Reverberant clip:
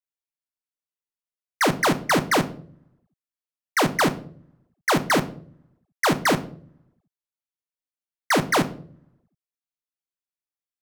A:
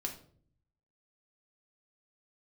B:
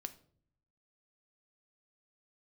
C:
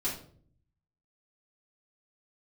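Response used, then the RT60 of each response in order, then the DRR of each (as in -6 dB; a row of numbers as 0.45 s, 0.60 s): B; 0.55 s, 0.55 s, 0.55 s; 1.0 dB, 9.0 dB, -8.5 dB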